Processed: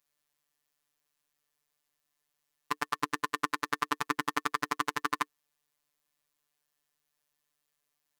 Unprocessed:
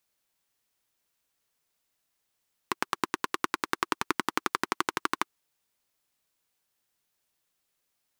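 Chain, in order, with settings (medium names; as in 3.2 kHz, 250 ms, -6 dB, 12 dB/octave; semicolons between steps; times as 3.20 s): band-stop 360 Hz, Q 12; robot voice 147 Hz; small resonant body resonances 1.1/1.8 kHz, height 9 dB; trim -1 dB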